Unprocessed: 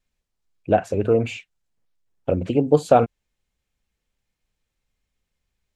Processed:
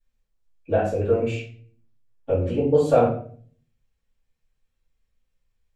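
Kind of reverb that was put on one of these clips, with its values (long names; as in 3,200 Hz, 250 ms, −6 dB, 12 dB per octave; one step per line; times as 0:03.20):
rectangular room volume 49 cubic metres, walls mixed, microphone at 2.4 metres
level −14.5 dB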